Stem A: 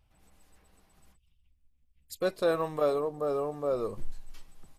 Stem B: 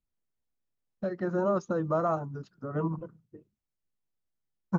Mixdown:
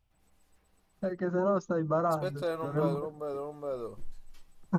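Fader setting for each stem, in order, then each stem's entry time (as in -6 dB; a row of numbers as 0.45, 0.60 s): -6.0, -0.5 dB; 0.00, 0.00 s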